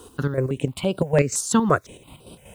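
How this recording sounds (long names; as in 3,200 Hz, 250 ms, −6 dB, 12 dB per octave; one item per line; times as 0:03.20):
chopped level 5.3 Hz, depth 60%, duty 45%
a quantiser's noise floor 10 bits, dither none
notches that jump at a steady rate 5.9 Hz 590–6,700 Hz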